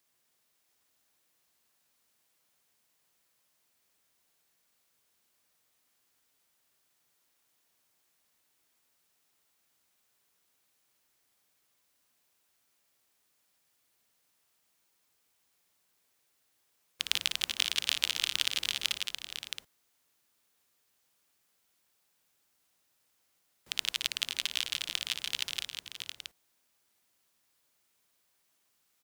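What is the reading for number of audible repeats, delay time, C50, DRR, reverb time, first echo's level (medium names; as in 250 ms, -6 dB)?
5, 58 ms, no reverb, no reverb, no reverb, -7.5 dB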